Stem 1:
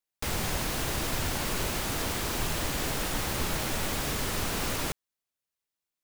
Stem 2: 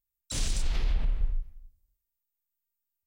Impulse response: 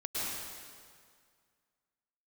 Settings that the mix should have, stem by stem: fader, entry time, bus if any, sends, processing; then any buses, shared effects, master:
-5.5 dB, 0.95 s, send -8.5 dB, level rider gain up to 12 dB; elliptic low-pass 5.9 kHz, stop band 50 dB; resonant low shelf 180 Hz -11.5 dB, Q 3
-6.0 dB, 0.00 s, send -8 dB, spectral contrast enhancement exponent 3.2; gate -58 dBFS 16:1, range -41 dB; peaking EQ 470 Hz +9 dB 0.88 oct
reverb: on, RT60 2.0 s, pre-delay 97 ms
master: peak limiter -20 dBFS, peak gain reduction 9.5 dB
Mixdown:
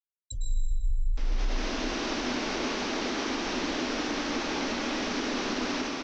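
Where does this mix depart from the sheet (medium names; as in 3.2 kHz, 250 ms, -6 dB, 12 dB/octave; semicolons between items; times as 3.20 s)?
stem 1 -5.5 dB -> -17.5 dB; reverb return +8.5 dB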